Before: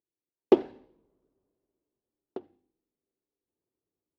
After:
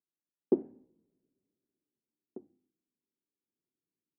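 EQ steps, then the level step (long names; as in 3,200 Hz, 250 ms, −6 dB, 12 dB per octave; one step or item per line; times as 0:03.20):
resonant band-pass 210 Hz, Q 1.6
high-frequency loss of the air 470 metres
0.0 dB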